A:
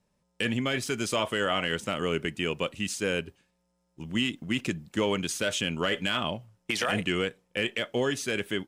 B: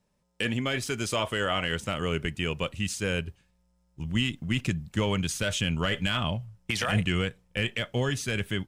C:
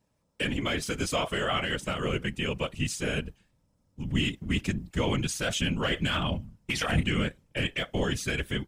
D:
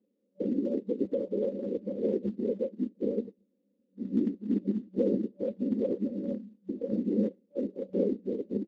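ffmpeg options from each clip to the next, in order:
ffmpeg -i in.wav -af "asubboost=boost=7:cutoff=120" out.wav
ffmpeg -i in.wav -af "afftfilt=real='hypot(re,im)*cos(2*PI*random(0))':imag='hypot(re,im)*sin(2*PI*random(1))':win_size=512:overlap=0.75,volume=5.5dB" out.wav
ffmpeg -i in.wav -af "afftfilt=real='re*between(b*sr/4096,190,580)':imag='im*between(b*sr/4096,190,580)':win_size=4096:overlap=0.75,volume=3.5dB" -ar 32000 -c:a libspeex -b:a 15k out.spx

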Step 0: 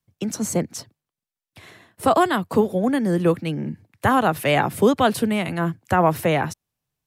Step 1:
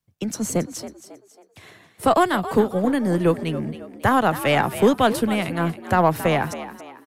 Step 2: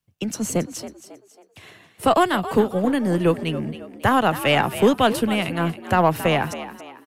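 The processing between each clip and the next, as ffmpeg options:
ffmpeg -i in.wav -filter_complex "[0:a]aeval=exprs='0.562*(cos(1*acos(clip(val(0)/0.562,-1,1)))-cos(1*PI/2))+0.0141*(cos(6*acos(clip(val(0)/0.562,-1,1)))-cos(6*PI/2))+0.00708*(cos(7*acos(clip(val(0)/0.562,-1,1)))-cos(7*PI/2))':channel_layout=same,asplit=5[link_01][link_02][link_03][link_04][link_05];[link_02]adelay=273,afreqshift=62,volume=-13.5dB[link_06];[link_03]adelay=546,afreqshift=124,volume=-21.7dB[link_07];[link_04]adelay=819,afreqshift=186,volume=-29.9dB[link_08];[link_05]adelay=1092,afreqshift=248,volume=-38dB[link_09];[link_01][link_06][link_07][link_08][link_09]amix=inputs=5:normalize=0" out.wav
ffmpeg -i in.wav -af "equalizer=frequency=2800:width=4.9:gain=6.5" out.wav

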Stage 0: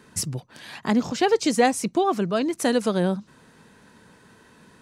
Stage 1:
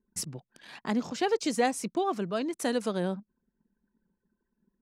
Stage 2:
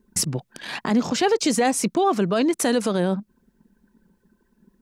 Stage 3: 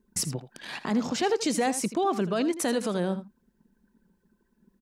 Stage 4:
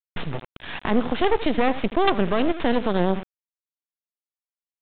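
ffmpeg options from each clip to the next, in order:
ffmpeg -i in.wav -af "anlmdn=0.251,equalizer=frequency=100:width=2.2:gain=-12,volume=-7dB" out.wav
ffmpeg -i in.wav -filter_complex "[0:a]asplit=2[link_01][link_02];[link_02]acompressor=threshold=-37dB:ratio=6,volume=2dB[link_03];[link_01][link_03]amix=inputs=2:normalize=0,alimiter=limit=-20dB:level=0:latency=1:release=20,volume=8.5dB" out.wav
ffmpeg -i in.wav -af "aecho=1:1:81:0.211,volume=-6dB" out.wav
ffmpeg -i in.wav -af "acrusher=bits=4:dc=4:mix=0:aa=0.000001,aresample=8000,aresample=44100,volume=8.5dB" out.wav

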